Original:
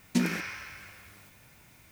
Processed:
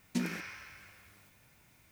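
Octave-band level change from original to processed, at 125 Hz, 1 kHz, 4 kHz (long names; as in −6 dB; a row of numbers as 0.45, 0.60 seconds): −7.0, −7.0, −7.0 decibels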